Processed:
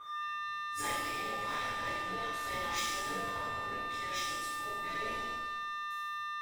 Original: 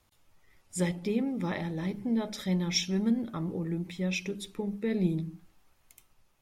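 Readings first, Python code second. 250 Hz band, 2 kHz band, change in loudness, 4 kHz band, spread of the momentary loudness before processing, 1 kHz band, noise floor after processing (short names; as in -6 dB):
-20.0 dB, +6.5 dB, -4.5 dB, -1.5 dB, 7 LU, +12.0 dB, -39 dBFS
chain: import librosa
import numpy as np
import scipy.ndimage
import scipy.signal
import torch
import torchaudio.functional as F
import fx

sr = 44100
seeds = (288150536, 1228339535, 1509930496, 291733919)

p1 = fx.spec_gate(x, sr, threshold_db=-15, keep='weak')
p2 = (np.mod(10.0 ** (31.0 / 20.0) * p1 + 1.0, 2.0) - 1.0) / 10.0 ** (31.0 / 20.0)
p3 = p1 + (p2 * librosa.db_to_amplitude(-7.0))
p4 = p3 + 10.0 ** (-35.0 / 20.0) * np.sin(2.0 * np.pi * 1200.0 * np.arange(len(p3)) / sr)
p5 = fx.power_curve(p4, sr, exponent=1.4)
p6 = fx.rev_shimmer(p5, sr, seeds[0], rt60_s=1.1, semitones=7, shimmer_db=-8, drr_db=-11.5)
y = p6 * librosa.db_to_amplitude(-7.5)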